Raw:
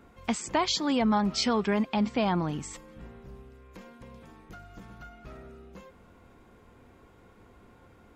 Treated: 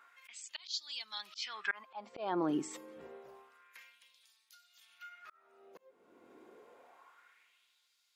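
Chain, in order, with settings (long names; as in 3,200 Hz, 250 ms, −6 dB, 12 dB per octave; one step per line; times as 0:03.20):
noise reduction from a noise print of the clip's start 8 dB
auto-filter high-pass sine 0.28 Hz 330–4,400 Hz
volume swells 624 ms
level +4 dB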